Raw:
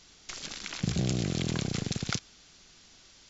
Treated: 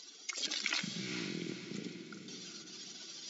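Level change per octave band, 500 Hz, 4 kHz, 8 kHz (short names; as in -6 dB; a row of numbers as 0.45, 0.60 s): -9.0 dB, -1.5 dB, n/a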